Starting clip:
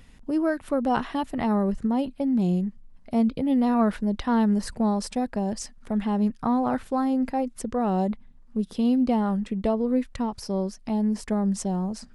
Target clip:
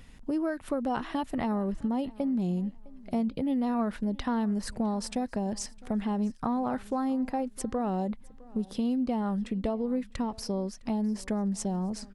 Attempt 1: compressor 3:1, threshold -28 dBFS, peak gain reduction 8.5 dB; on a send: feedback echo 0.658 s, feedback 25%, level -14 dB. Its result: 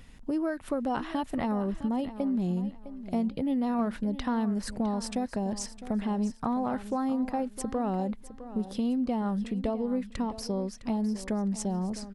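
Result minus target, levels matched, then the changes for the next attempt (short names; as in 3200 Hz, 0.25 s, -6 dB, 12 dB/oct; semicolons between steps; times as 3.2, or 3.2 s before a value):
echo-to-direct +9 dB
change: feedback echo 0.658 s, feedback 25%, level -23 dB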